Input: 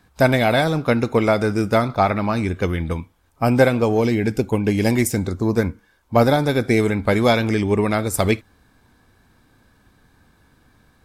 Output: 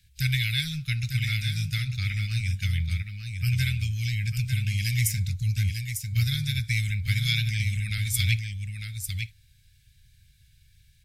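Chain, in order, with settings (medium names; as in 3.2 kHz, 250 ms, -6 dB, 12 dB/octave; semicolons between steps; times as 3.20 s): inverse Chebyshev band-stop 270–1100 Hz, stop band 50 dB; on a send: delay 899 ms -6.5 dB; on the sum: dynamic bell 8.2 kHz, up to -4 dB, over -47 dBFS, Q 2.4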